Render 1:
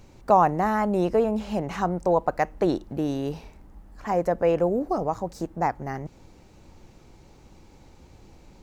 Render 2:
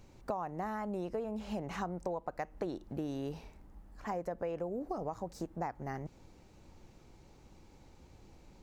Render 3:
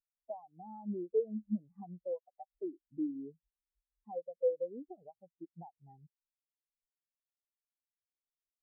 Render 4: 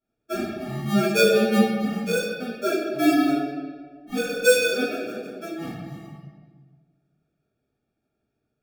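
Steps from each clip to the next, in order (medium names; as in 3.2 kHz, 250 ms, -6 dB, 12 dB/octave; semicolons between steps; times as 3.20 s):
compression 16:1, threshold -26 dBFS, peak gain reduction 14.5 dB; trim -7 dB
spectral contrast expander 4:1; trim -1 dB
sample-rate reducer 1 kHz, jitter 0%; comb of notches 520 Hz; reverberation RT60 1.7 s, pre-delay 3 ms, DRR -15 dB; trim +1.5 dB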